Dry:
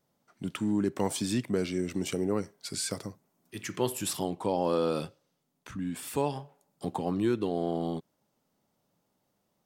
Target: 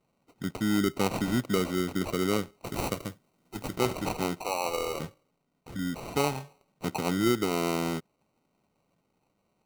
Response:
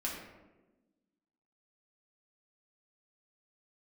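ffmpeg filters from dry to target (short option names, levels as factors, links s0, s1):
-filter_complex "[0:a]asplit=3[s0][s1][s2];[s0]afade=t=out:st=4.41:d=0.02[s3];[s1]highpass=650,afade=t=in:st=4.41:d=0.02,afade=t=out:st=4.99:d=0.02[s4];[s2]afade=t=in:st=4.99:d=0.02[s5];[s3][s4][s5]amix=inputs=3:normalize=0,acrusher=samples=26:mix=1:aa=0.000001,asettb=1/sr,asplit=3[s6][s7][s8];[s6]atrim=end=2.664[s9];[s7]atrim=start=2.66:end=3.75,asetpts=PTS-STARTPTS,afade=t=in:d=0.004:c=qsin,afade=t=out:st=1.086:d=0.004:c=qsin,highshelf=f=6500:g=6[s10];[s8]atrim=start=3.746[s11];[s9][s10]acrossfade=d=0.004:c1=hsin:c2=qsin[s12];[s12][s11]acrossfade=d=0.004:c1=qsin:c2=hsin,volume=1.26"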